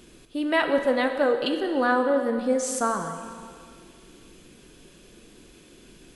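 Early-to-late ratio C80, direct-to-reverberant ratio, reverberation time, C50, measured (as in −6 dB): 8.0 dB, 5.5 dB, 2.2 s, 7.0 dB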